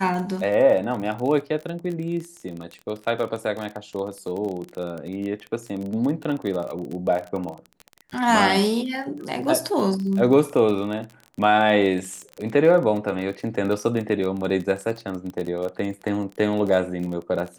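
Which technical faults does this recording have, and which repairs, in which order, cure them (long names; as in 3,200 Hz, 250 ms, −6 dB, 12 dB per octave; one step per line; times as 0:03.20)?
surface crackle 30 per second −28 dBFS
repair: click removal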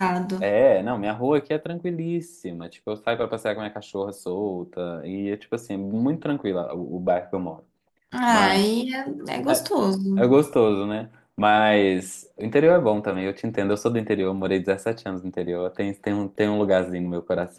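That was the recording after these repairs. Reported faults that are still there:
none of them is left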